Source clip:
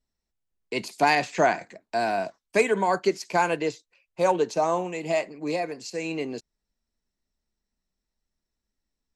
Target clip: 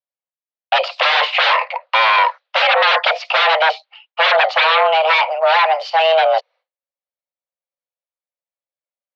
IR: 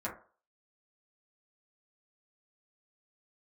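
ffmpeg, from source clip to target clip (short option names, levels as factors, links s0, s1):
-af "aeval=exprs='0.355*sin(PI/2*7.94*val(0)/0.355)':c=same,highpass=f=190:t=q:w=0.5412,highpass=f=190:t=q:w=1.307,lowpass=f=3600:t=q:w=0.5176,lowpass=f=3600:t=q:w=0.7071,lowpass=f=3600:t=q:w=1.932,afreqshift=320,agate=range=0.0224:threshold=0.0112:ratio=3:detection=peak"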